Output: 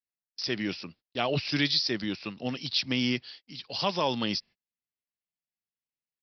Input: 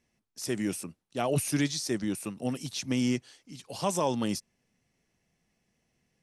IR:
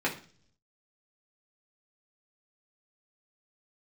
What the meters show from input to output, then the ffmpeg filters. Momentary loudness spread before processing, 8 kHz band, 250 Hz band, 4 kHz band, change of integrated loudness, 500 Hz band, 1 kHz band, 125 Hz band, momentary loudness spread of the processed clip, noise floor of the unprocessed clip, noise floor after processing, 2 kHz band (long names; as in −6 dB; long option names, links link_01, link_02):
11 LU, −12.0 dB, −1.5 dB, +10.0 dB, +1.5 dB, −1.0 dB, +1.0 dB, −2.0 dB, 12 LU, −79 dBFS, below −85 dBFS, +6.5 dB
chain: -af "aresample=11025,aresample=44100,agate=range=-32dB:threshold=-53dB:ratio=16:detection=peak,crystalizer=i=7.5:c=0,volume=-2dB"